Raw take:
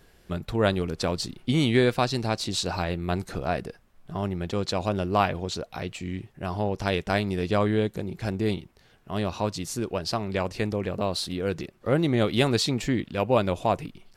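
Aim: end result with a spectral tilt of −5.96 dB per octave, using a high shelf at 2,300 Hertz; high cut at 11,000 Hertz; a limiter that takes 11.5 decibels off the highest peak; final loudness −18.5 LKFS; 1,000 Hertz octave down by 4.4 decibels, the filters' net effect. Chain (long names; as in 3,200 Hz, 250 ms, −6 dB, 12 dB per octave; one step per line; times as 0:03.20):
low-pass filter 11,000 Hz
parametric band 1,000 Hz −5 dB
high-shelf EQ 2,300 Hz −7.5 dB
level +14.5 dB
brickwall limiter −7 dBFS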